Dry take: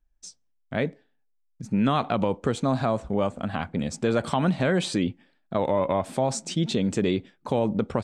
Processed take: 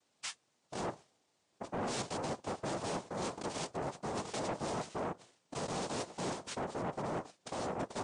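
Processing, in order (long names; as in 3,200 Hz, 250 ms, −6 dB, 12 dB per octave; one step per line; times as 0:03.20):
treble cut that deepens with the level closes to 1,400 Hz, closed at −22 dBFS
high-shelf EQ 3,200 Hz +3.5 dB
reversed playback
downward compressor 8 to 1, threshold −32 dBFS, peak gain reduction 14 dB
reversed playback
background noise pink −73 dBFS
in parallel at −8 dB: dead-zone distortion −54 dBFS
on the sum: cochlear-implant simulation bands 2
soft clipping −30 dBFS, distortion −11 dB
level −1.5 dB
MP3 48 kbit/s 22,050 Hz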